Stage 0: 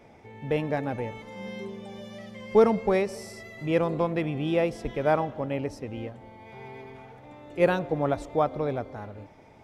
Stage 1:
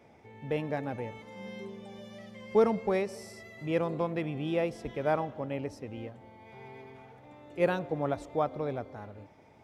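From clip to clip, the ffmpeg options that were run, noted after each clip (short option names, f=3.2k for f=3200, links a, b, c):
-af "highpass=58,volume=-5dB"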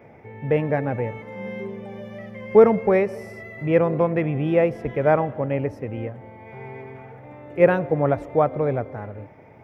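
-af "equalizer=f=125:t=o:w=1:g=7,equalizer=f=500:t=o:w=1:g=5,equalizer=f=2k:t=o:w=1:g=7,equalizer=f=4k:t=o:w=1:g=-11,equalizer=f=8k:t=o:w=1:g=-12,volume=6.5dB"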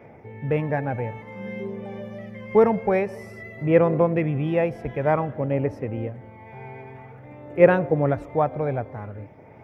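-af "aphaser=in_gain=1:out_gain=1:delay=1.3:decay=0.31:speed=0.52:type=sinusoidal,volume=-2dB"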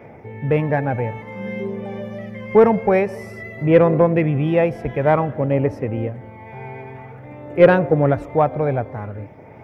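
-af "asoftclip=type=tanh:threshold=-6.5dB,volume=5.5dB"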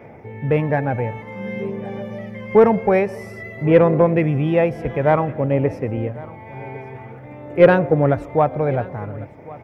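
-af "aecho=1:1:1102:0.0944"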